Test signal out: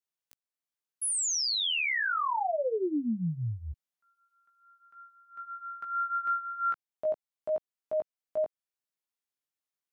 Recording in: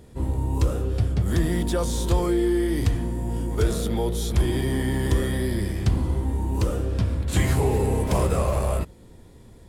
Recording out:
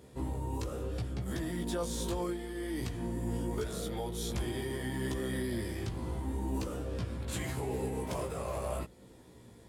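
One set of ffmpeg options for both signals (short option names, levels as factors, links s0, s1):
-af "highpass=f=170:p=1,alimiter=limit=0.0668:level=0:latency=1:release=407,flanger=delay=15.5:depth=2.2:speed=0.77"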